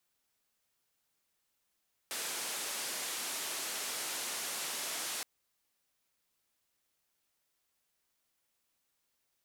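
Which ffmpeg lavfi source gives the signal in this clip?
ffmpeg -f lavfi -i "anoisesrc=color=white:duration=3.12:sample_rate=44100:seed=1,highpass=frequency=280,lowpass=frequency=11000,volume=-30.6dB" out.wav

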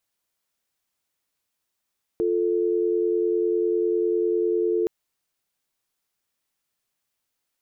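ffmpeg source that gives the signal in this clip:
ffmpeg -f lavfi -i "aevalsrc='0.075*(sin(2*PI*350*t)+sin(2*PI*440*t))':duration=2.67:sample_rate=44100" out.wav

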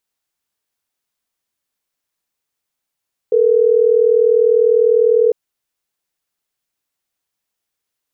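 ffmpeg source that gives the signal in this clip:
ffmpeg -f lavfi -i "aevalsrc='0.251*(sin(2*PI*440*t)+sin(2*PI*480*t))*clip(min(mod(t,6),2-mod(t,6))/0.005,0,1)':duration=3.12:sample_rate=44100" out.wav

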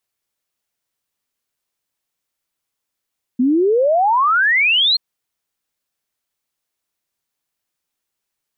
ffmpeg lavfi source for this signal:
ffmpeg -f lavfi -i "aevalsrc='0.266*clip(min(t,1.58-t)/0.01,0,1)*sin(2*PI*240*1.58/log(4300/240)*(exp(log(4300/240)*t/1.58)-1))':duration=1.58:sample_rate=44100" out.wav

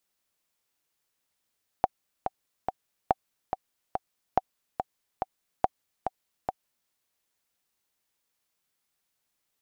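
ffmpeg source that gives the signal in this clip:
ffmpeg -f lavfi -i "aevalsrc='pow(10,(-7.5-7*gte(mod(t,3*60/142),60/142))/20)*sin(2*PI*758*mod(t,60/142))*exp(-6.91*mod(t,60/142)/0.03)':duration=5.07:sample_rate=44100" out.wav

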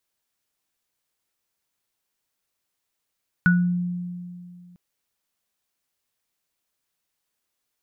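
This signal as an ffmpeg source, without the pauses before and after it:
ffmpeg -f lavfi -i "aevalsrc='0.2*pow(10,-3*t/2.39)*sin(2*PI*177*t)+0.2*pow(10,-3*t/0.3)*sin(2*PI*1470*t)':duration=1.3:sample_rate=44100" out.wav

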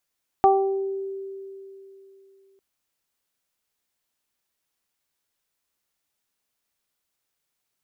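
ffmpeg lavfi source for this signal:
ffmpeg -f lavfi -i "aevalsrc='0.141*pow(10,-3*t/3.2)*sin(2*PI*389*t)+0.282*pow(10,-3*t/0.62)*sin(2*PI*778*t)+0.0596*pow(10,-3*t/0.43)*sin(2*PI*1167*t)':duration=2.15:sample_rate=44100" out.wav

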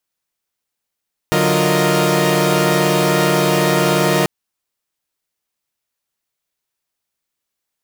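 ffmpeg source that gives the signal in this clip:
ffmpeg -f lavfi -i "aevalsrc='0.141*((2*mod(146.83*t,1)-1)+(2*mod(185*t,1)-1)+(2*mod(349.23*t,1)-1)+(2*mod(466.16*t,1)-1)+(2*mod(622.25*t,1)-1))':duration=2.94:sample_rate=44100" out.wav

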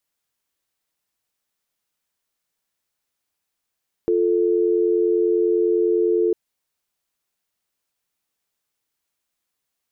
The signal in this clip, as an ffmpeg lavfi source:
ffmpeg -f lavfi -i "aevalsrc='0.119*(sin(2*PI*350*t)+sin(2*PI*440*t))':duration=2.25:sample_rate=44100" out.wav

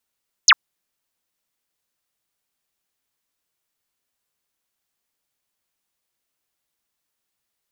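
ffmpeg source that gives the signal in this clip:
ffmpeg -f lavfi -i "aevalsrc='0.447*clip(t/0.002,0,1)*clip((0.05-t)/0.002,0,1)*sin(2*PI*7400*0.05/log(950/7400)*(exp(log(950/7400)*t/0.05)-1))':duration=0.05:sample_rate=44100" out.wav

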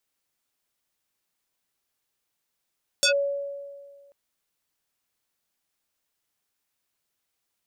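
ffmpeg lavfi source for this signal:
ffmpeg -f lavfi -i "aevalsrc='0.158*pow(10,-3*t/1.78)*sin(2*PI*563*t+4.3*clip(1-t/0.1,0,1)*sin(2*PI*3.58*563*t))':duration=1.09:sample_rate=44100" out.wav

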